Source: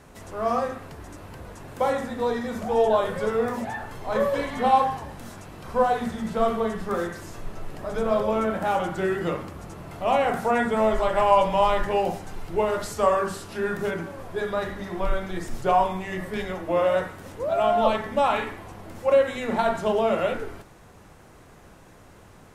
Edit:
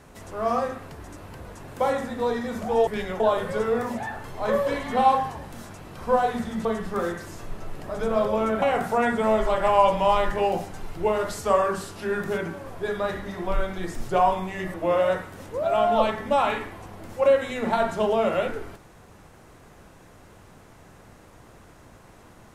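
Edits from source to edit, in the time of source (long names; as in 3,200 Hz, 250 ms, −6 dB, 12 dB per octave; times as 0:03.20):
0:06.32–0:06.60: remove
0:08.57–0:10.15: remove
0:16.27–0:16.60: move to 0:02.87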